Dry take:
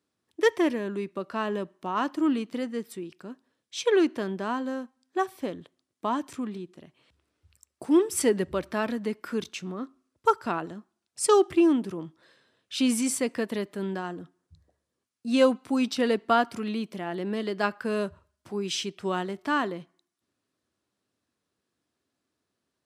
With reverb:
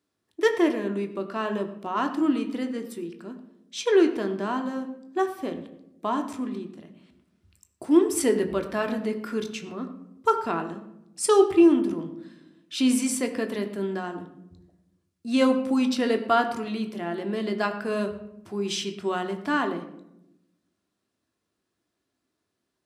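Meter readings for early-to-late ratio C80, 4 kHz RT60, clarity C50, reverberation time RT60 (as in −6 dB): 12.5 dB, 0.50 s, 10.5 dB, 0.90 s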